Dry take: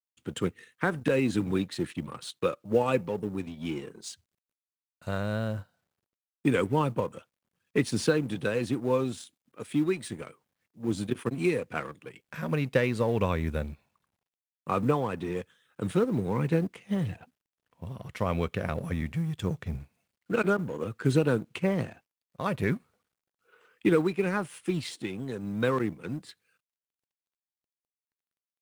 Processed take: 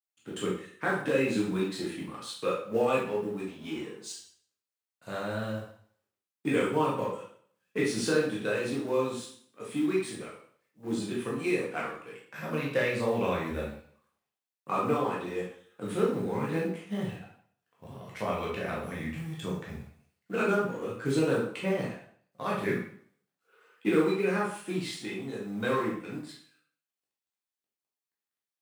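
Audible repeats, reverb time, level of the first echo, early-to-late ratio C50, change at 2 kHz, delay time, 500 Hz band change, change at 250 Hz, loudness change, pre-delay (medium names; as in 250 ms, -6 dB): no echo, 0.55 s, no echo, 3.0 dB, +0.5 dB, no echo, -0.5 dB, -2.0 dB, -1.5 dB, 7 ms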